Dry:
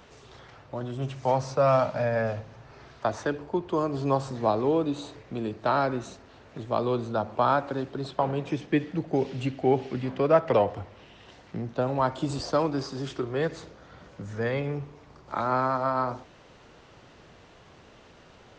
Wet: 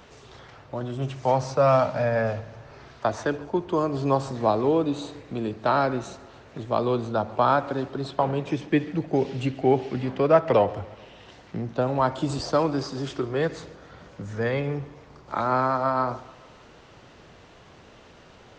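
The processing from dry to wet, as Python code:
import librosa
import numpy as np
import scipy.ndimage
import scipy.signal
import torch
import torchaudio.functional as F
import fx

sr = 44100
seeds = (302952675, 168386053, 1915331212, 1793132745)

y = fx.echo_feedback(x, sr, ms=142, feedback_pct=59, wet_db=-22.0)
y = y * 10.0 ** (2.5 / 20.0)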